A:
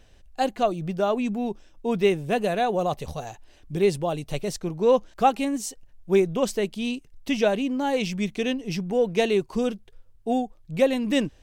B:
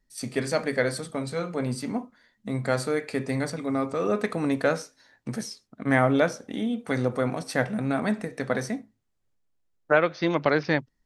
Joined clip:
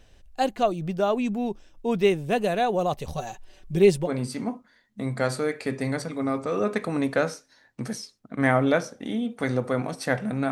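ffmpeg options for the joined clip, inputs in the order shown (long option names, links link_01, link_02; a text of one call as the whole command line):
ffmpeg -i cue0.wav -i cue1.wav -filter_complex "[0:a]asettb=1/sr,asplit=3[link_01][link_02][link_03];[link_01]atrim=end=3.124[link_04];[link_02]atrim=start=3.12:end=4.09,asetpts=PTS-STARTPTS,afade=type=in:duration=0.004:curve=qsin,afade=type=out:start_time=0.966:duration=0.004:curve=qsin,aecho=1:1:5.3:0.71,atrim=end_sample=42777[link_05];[link_03]atrim=start=4.086[link_06];[link_04][link_05]acrossfade=duration=0.004:curve1=hsin:curve2=qsin[link_07];[link_07][link_06]acrossfade=duration=0.004:curve1=qsin:curve2=hsin,apad=whole_dur=10.51,atrim=end=10.51,atrim=end=4.09,asetpts=PTS-STARTPTS[link_08];[1:a]atrim=start=1.51:end=7.99,asetpts=PTS-STARTPTS[link_09];[link_08][link_09]acrossfade=duration=0.06:curve1=tri:curve2=tri" out.wav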